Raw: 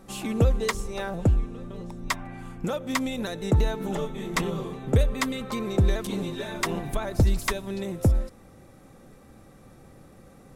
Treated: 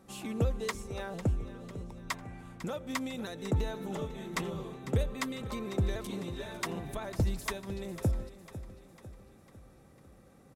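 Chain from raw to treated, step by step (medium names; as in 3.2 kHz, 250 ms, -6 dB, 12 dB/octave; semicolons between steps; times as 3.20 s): high-pass 45 Hz; on a send: feedback delay 500 ms, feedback 51%, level -14 dB; on the sum: trim -8 dB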